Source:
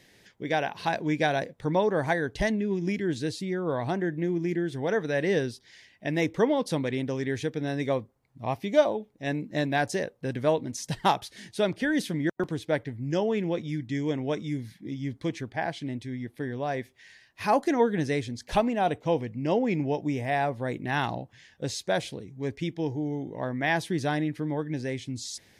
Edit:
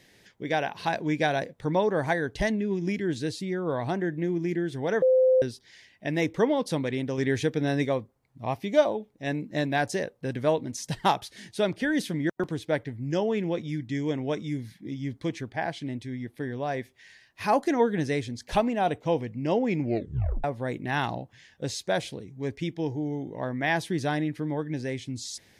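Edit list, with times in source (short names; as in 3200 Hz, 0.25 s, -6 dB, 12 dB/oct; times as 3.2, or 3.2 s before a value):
5.02–5.42 bleep 516 Hz -16.5 dBFS
7.18–7.85 gain +4 dB
19.81 tape stop 0.63 s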